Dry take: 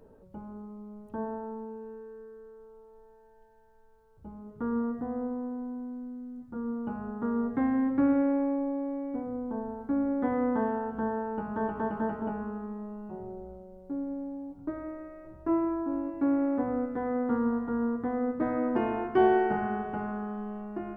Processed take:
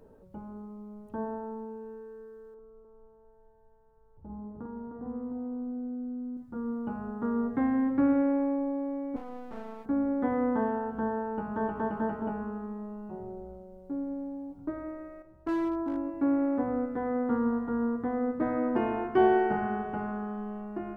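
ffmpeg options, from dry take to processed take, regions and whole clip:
-filter_complex "[0:a]asettb=1/sr,asplit=3[s0][s1][s2];[s0]atrim=end=2.544[s3];[s1]atrim=start=2.54:end=6.37,asetpts=PTS-STARTPTS,afade=t=in:d=0.004:c=qsin,afade=t=out:st=3.826:d=0.004:c=qsin,lowpass=1100,acompressor=threshold=0.00891:ratio=2.5:attack=3.2:release=140:knee=1:detection=peak,aecho=1:1:48|49|293|306|703:0.531|0.501|0.1|0.531|0.15,atrim=end_sample=168903[s4];[s2]atrim=start=6.366[s5];[s3][s4]acrossfade=d=0.004:c1=hsin:c2=qsin[s6];[s6][s5]acrossfade=d=0.004:c1=qsin:c2=hsin,asettb=1/sr,asplit=3[s7][s8][s9];[s7]atrim=end=9.164[s10];[s8]atrim=start=9.16:end=9.86,asetpts=PTS-STARTPTS,afade=t=in:d=0.004:c=qsin,afade=t=out:st=0.696:d=0.004:c=qsin,bass=f=250:g=-10,treble=f=4000:g=8,aeval=exprs='max(val(0),0)':c=same[s11];[s9]atrim=start=9.856[s12];[s10][s11]acrossfade=d=0.004:c1=hsin:c2=qsin[s13];[s13][s12]acrossfade=d=0.004:c1=qsin:c2=hsin,asettb=1/sr,asplit=3[s14][s15][s16];[s14]atrim=end=15.224[s17];[s15]atrim=start=15.22:end=15.97,asetpts=PTS-STARTPTS,afade=t=in:d=0.004:c=qsin,afade=t=out:st=0.746:d=0.004:c=qsin,agate=range=0.398:threshold=0.0158:ratio=16:release=100:detection=peak,asoftclip=type=hard:threshold=0.0473[s18];[s16]atrim=start=15.966[s19];[s17][s18]acrossfade=d=0.004:c1=hsin:c2=qsin[s20];[s20][s19]acrossfade=d=0.004:c1=qsin:c2=hsin"

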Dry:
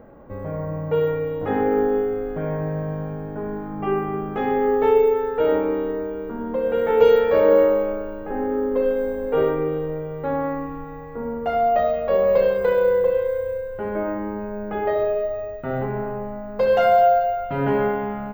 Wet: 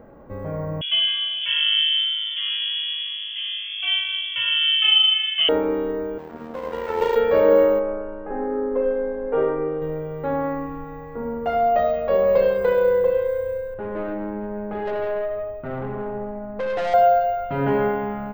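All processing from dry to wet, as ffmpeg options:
-filter_complex "[0:a]asettb=1/sr,asplit=3[s0][s1][s2];[s0]atrim=end=0.814[s3];[s1]atrim=start=0.81:end=5.49,asetpts=PTS-STARTPTS,afade=t=in:d=0.004:c=qsin,afade=t=out:st=4.676:d=0.004:c=qsin,aemphasis=mode=production:type=50fm,lowpass=f=3000:t=q:w=0.5098,lowpass=f=3000:t=q:w=0.6013,lowpass=f=3000:t=q:w=0.9,lowpass=f=3000:t=q:w=2.563,afreqshift=-3500[s4];[s2]atrim=start=5.486[s5];[s3][s4]acrossfade=d=0.004:c1=hsin:c2=qsin[s6];[s6][s5]acrossfade=d=0.004:c1=qsin:c2=hsin,asettb=1/sr,asplit=3[s7][s8][s9];[s7]atrim=end=6.184[s10];[s8]atrim=start=6.18:end=7.16,asetpts=PTS-STARTPTS,afade=t=in:d=0.004:c=qsin,afade=t=out:st=0.976:d=0.004:c=qsin,aeval=exprs='max(val(0),0)':c=same,highpass=f=140:p=1,tremolo=f=83:d=0.519[s11];[s9]atrim=start=7.156[s12];[s10][s11]acrossfade=d=0.004:c1=hsin:c2=qsin[s13];[s13][s12]acrossfade=d=0.004:c1=qsin:c2=hsin,asettb=1/sr,asplit=3[s14][s15][s16];[s14]atrim=end=7.794[s17];[s15]atrim=start=7.79:end=9.82,asetpts=PTS-STARTPTS,afade=t=in:d=0.004:c=qsin,afade=t=out:st=2.026:d=0.004:c=qsin,lowpass=1800,equalizer=f=96:w=0.62:g=-9[s18];[s16]atrim=start=9.816[s19];[s17][s18]acrossfade=d=0.004:c1=hsin:c2=qsin[s20];[s20][s19]acrossfade=d=0.004:c1=qsin:c2=hsin,asettb=1/sr,asplit=3[s21][s22][s23];[s21]atrim=end=13.744[s24];[s22]atrim=start=13.74:end=16.94,asetpts=PTS-STARTPTS,afade=t=in:d=0.004:c=qsin,afade=t=out:st=3.196:d=0.004:c=qsin,highshelf=f=2800:g=-11,aeval=exprs='(tanh(14.1*val(0)+0.3)-tanh(0.3))/14.1':c=same,aecho=1:1:164:0.282,atrim=end_sample=141120[s25];[s23]atrim=start=16.936[s26];[s24][s25]acrossfade=d=0.004:c1=hsin:c2=qsin[s27];[s27][s26]acrossfade=d=0.004:c1=qsin:c2=hsin"

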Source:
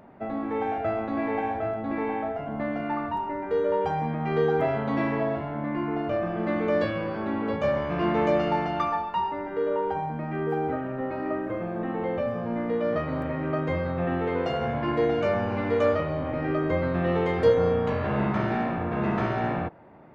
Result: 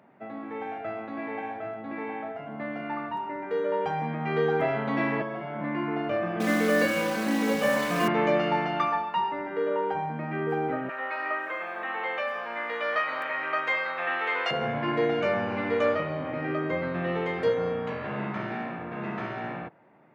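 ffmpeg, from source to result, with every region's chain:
-filter_complex "[0:a]asettb=1/sr,asplit=3[s0][s1][s2];[s0]atrim=end=5.214[s3];[s1]atrim=start=5.21:end=5.61,asetpts=PTS-STARTPTS,afade=t=in:d=0.004:c=qsin,afade=t=out:st=0.396:d=0.004:c=qsin,bandreject=f=4000:w=7.7,aecho=1:1:5.4:0.67,atrim=end_sample=17640,acrossover=split=190|1200[s4][s5][s6];[s4]acompressor=threshold=0.00501:ratio=4[s7];[s5]acompressor=threshold=0.0282:ratio=4[s8];[s6]acompressor=threshold=0.00562:ratio=4[s9];[s7][s8][s9]amix=inputs=3:normalize=0[s10];[s2]atrim=start=5.606[s11];[s3][s10]acrossfade=d=0.004:c1=hsin:c2=qsin[s12];[s12][s11]acrossfade=d=0.004:c1=qsin:c2=hsin,asettb=1/sr,asplit=3[s13][s14][s15];[s13]atrim=end=6.404[s16];[s14]atrim=start=6.4:end=8.08,asetpts=PTS-STARTPTS,afade=t=in:d=0.004:c=qsin,afade=t=out:st=1.676:d=0.004:c=qsin,acrusher=bits=7:dc=4:mix=0:aa=0.000001,aecho=1:1:4:0.97,atrim=end_sample=74088[s17];[s15]atrim=start=8.076[s18];[s16][s17]acrossfade=d=0.004:c1=hsin:c2=qsin[s19];[s19][s18]acrossfade=d=0.004:c1=qsin:c2=hsin,asettb=1/sr,asplit=3[s20][s21][s22];[s20]atrim=end=10.894[s23];[s21]atrim=start=10.89:end=14.51,asetpts=PTS-STARTPTS,afade=t=in:d=0.004:c=qsin,afade=t=out:st=3.616:d=0.004:c=qsin,highpass=1100,acontrast=90[s24];[s22]atrim=start=14.506[s25];[s23][s24]acrossfade=d=0.004:c1=hsin:c2=qsin[s26];[s26][s25]acrossfade=d=0.004:c1=qsin:c2=hsin,highpass=f=120:w=0.5412,highpass=f=120:w=1.3066,equalizer=f=2200:t=o:w=1.5:g=6,dynaudnorm=f=220:g=31:m=2.37,volume=0.398"

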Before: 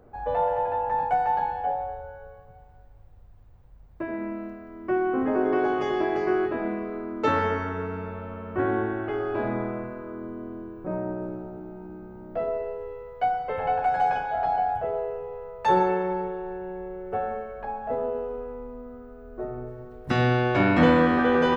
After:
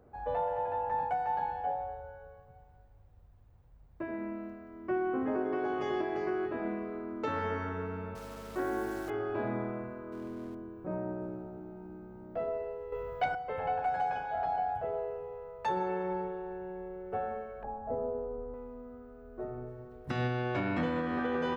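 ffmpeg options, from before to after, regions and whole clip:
-filter_complex "[0:a]asettb=1/sr,asplit=3[s0][s1][s2];[s0]atrim=end=8.154[s3];[s1]atrim=start=8.15:end=9.1,asetpts=PTS-STARTPTS,afade=t=in:d=0.004:c=qsin,afade=t=out:st=0.946:d=0.004:c=qsin,highpass=250,acrusher=bits=8:dc=4:mix=0:aa=0.000001,aeval=exprs='val(0)+0.00631*(sin(2*PI*50*n/s)+sin(2*PI*2*50*n/s)/2+sin(2*PI*3*50*n/s)/3+sin(2*PI*4*50*n/s)/4+sin(2*PI*5*50*n/s)/5)':c=same[s4];[s2]atrim=start=9.096[s5];[s3][s4]acrossfade=d=0.004:c1=hsin:c2=qsin[s6];[s6][s5]acrossfade=d=0.004:c1=qsin:c2=hsin,asettb=1/sr,asplit=3[s7][s8][s9];[s7]atrim=end=10.124[s10];[s8]atrim=start=10.12:end=10.55,asetpts=PTS-STARTPTS,afade=t=in:d=0.004:c=qsin,afade=t=out:st=0.426:d=0.004:c=qsin,aeval=exprs='val(0)+0.5*0.00596*sgn(val(0))':c=same,highshelf=f=5600:g=-4.5[s11];[s9]atrim=start=10.546[s12];[s10][s11]acrossfade=d=0.004:c1=hsin:c2=qsin[s13];[s13][s12]acrossfade=d=0.004:c1=qsin:c2=hsin,asettb=1/sr,asplit=3[s14][s15][s16];[s14]atrim=end=12.924[s17];[s15]atrim=start=12.92:end=13.35,asetpts=PTS-STARTPTS,afade=t=in:d=0.004:c=qsin,afade=t=out:st=0.426:d=0.004:c=qsin,asplit=2[s18][s19];[s19]adelay=21,volume=0.631[s20];[s18][s20]amix=inputs=2:normalize=0,atrim=end_sample=18963,aeval=exprs='0.2*sin(PI/2*1.78*val(0)/0.2)':c=same[s21];[s16]atrim=start=13.346[s22];[s17][s21]acrossfade=d=0.004:c1=hsin:c2=qsin[s23];[s23][s22]acrossfade=d=0.004:c1=qsin:c2=hsin,asettb=1/sr,asplit=3[s24][s25][s26];[s24]atrim=end=17.634[s27];[s25]atrim=start=17.63:end=18.54,asetpts=PTS-STARTPTS,afade=t=in:d=0.004:c=qsin,afade=t=out:st=0.906:d=0.004:c=qsin,lowpass=1000,lowshelf=f=120:g=7.5[s28];[s26]atrim=start=18.536[s29];[s27][s28]acrossfade=d=0.004:c1=hsin:c2=qsin[s30];[s30][s29]acrossfade=d=0.004:c1=qsin:c2=hsin,highpass=f=80:p=1,lowshelf=f=110:g=6.5,alimiter=limit=0.15:level=0:latency=1:release=366,volume=0.473"

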